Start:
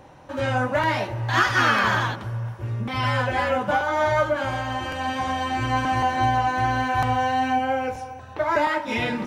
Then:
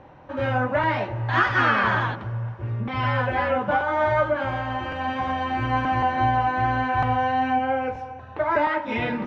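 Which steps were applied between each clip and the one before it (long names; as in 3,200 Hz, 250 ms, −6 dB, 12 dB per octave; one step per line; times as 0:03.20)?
low-pass filter 2,600 Hz 12 dB per octave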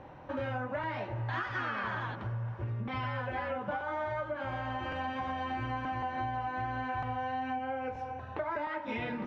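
downward compressor 6 to 1, threshold −31 dBFS, peak gain reduction 15 dB
level −2 dB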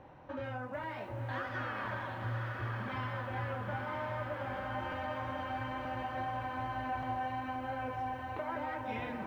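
feedback delay with all-pass diffusion 981 ms, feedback 57%, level −3 dB
feedback echo at a low word length 442 ms, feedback 35%, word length 9 bits, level −13.5 dB
level −5 dB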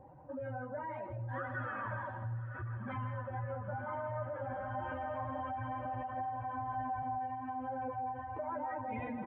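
expanding power law on the bin magnitudes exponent 1.9
single-tap delay 160 ms −10 dB
level −1 dB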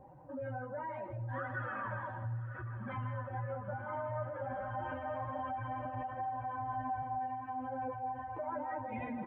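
flanger 1.1 Hz, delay 4.9 ms, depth 2.2 ms, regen −56%
level +4 dB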